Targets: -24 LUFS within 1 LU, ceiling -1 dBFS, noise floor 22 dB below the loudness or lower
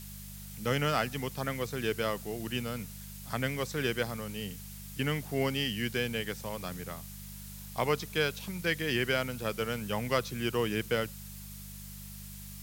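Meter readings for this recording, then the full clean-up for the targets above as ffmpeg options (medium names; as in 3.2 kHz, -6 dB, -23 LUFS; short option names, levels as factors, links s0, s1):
hum 50 Hz; highest harmonic 200 Hz; hum level -44 dBFS; noise floor -45 dBFS; noise floor target -55 dBFS; loudness -33.0 LUFS; peak level -13.0 dBFS; loudness target -24.0 LUFS
-> -af "bandreject=f=50:t=h:w=4,bandreject=f=100:t=h:w=4,bandreject=f=150:t=h:w=4,bandreject=f=200:t=h:w=4"
-af "afftdn=nr=10:nf=-45"
-af "volume=2.82"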